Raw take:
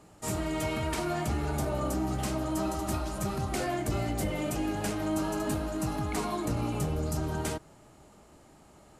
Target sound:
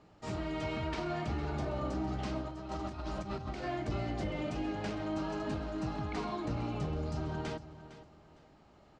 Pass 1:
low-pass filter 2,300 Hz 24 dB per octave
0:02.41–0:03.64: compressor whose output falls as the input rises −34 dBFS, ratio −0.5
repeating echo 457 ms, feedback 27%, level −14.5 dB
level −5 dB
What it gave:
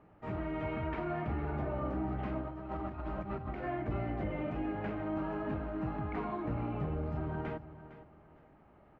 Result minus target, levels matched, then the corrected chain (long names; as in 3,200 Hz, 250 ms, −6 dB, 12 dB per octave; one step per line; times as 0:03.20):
4,000 Hz band −12.0 dB
low-pass filter 5,100 Hz 24 dB per octave
0:02.41–0:03.64: compressor whose output falls as the input rises −34 dBFS, ratio −0.5
repeating echo 457 ms, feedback 27%, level −14.5 dB
level −5 dB